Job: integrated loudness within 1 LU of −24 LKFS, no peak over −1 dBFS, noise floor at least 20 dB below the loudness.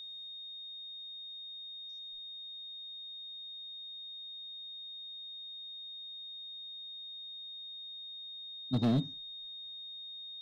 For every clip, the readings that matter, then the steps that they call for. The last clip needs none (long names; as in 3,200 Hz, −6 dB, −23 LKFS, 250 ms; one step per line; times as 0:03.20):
share of clipped samples 0.3%; peaks flattened at −24.0 dBFS; interfering tone 3,700 Hz; level of the tone −43 dBFS; integrated loudness −40.5 LKFS; sample peak −24.0 dBFS; target loudness −24.0 LKFS
→ clipped peaks rebuilt −24 dBFS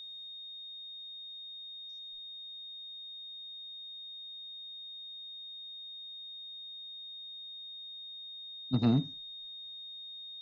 share of clipped samples 0.0%; interfering tone 3,700 Hz; level of the tone −43 dBFS
→ notch filter 3,700 Hz, Q 30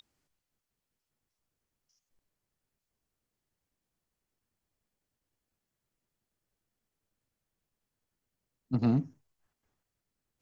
interfering tone none found; integrated loudness −30.5 LKFS; sample peak −17.0 dBFS; target loudness −24.0 LKFS
→ level +6.5 dB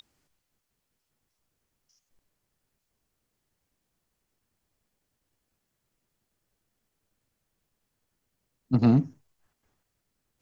integrated loudness −24.0 LKFS; sample peak −10.5 dBFS; background noise floor −81 dBFS